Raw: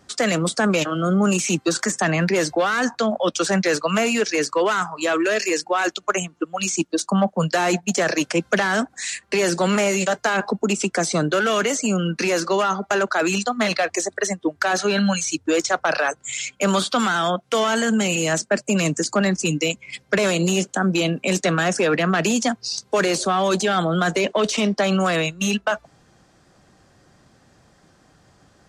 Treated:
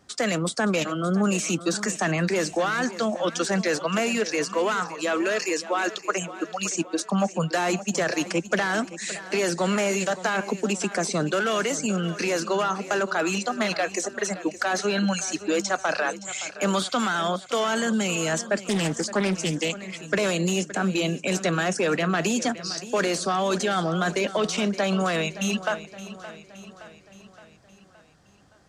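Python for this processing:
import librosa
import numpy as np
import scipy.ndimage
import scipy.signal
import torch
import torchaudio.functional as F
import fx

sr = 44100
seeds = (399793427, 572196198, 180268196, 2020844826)

y = fx.echo_feedback(x, sr, ms=569, feedback_pct=55, wet_db=-15.0)
y = fx.doppler_dist(y, sr, depth_ms=0.36, at=(18.59, 20.0))
y = y * librosa.db_to_amplitude(-4.5)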